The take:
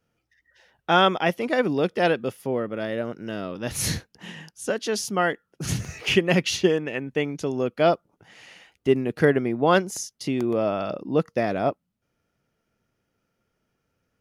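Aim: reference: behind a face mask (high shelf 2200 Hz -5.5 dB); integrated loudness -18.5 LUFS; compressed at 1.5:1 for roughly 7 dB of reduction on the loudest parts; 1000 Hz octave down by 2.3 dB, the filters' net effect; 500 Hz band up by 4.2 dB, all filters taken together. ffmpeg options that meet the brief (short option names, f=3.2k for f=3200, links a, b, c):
-af "equalizer=f=500:t=o:g=7,equalizer=f=1k:t=o:g=-6.5,acompressor=threshold=-30dB:ratio=1.5,highshelf=f=2.2k:g=-5.5,volume=9dB"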